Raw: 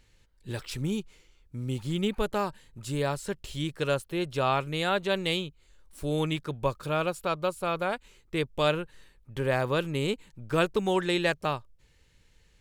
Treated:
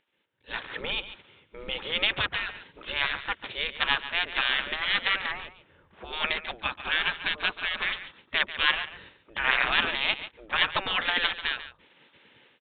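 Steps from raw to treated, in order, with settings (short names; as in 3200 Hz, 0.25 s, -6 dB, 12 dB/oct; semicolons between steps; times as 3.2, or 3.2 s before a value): spectral gate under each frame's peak -20 dB weak; dynamic EQ 1700 Hz, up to +6 dB, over -57 dBFS, Q 1.9; AGC gain up to 16.5 dB; in parallel at -8.5 dB: companded quantiser 4-bit; 5.32–6.13 on the sum: air absorption 490 m; on a send: echo 0.141 s -13 dB; on the sum: downsampling 8000 Hz; 9.44–9.91 fast leveller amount 50%; gain -5.5 dB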